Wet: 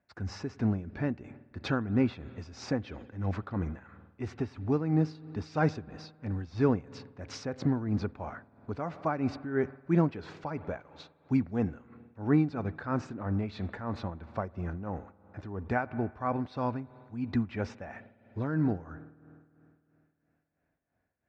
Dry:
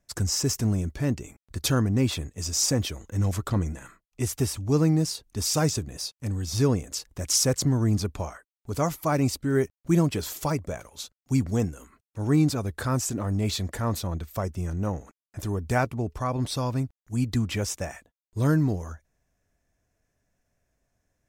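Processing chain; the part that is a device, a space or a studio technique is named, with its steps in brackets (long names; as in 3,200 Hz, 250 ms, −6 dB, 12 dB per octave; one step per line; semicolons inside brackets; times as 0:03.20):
combo amplifier with spring reverb and tremolo (spring reverb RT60 2.8 s, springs 51 ms, chirp 40 ms, DRR 18 dB; amplitude tremolo 3 Hz, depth 68%; loudspeaker in its box 85–3,400 Hz, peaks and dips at 130 Hz −5 dB, 240 Hz +3 dB, 800 Hz +5 dB, 1,500 Hz +5 dB, 3,200 Hz −8 dB)
level −2 dB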